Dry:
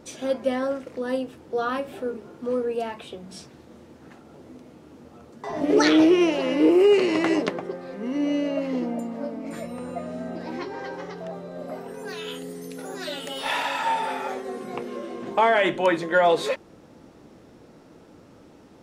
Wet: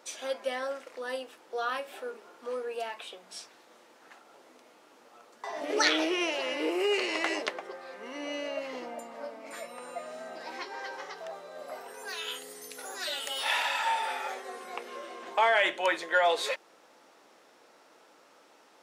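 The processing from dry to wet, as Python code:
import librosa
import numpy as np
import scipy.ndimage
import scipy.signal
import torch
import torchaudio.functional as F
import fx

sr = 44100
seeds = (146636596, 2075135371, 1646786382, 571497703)

y = fx.bass_treble(x, sr, bass_db=0, treble_db=3, at=(9.82, 13.44))
y = scipy.signal.sosfilt(scipy.signal.butter(2, 790.0, 'highpass', fs=sr, output='sos'), y)
y = fx.dynamic_eq(y, sr, hz=1100.0, q=1.5, threshold_db=-40.0, ratio=4.0, max_db=-4)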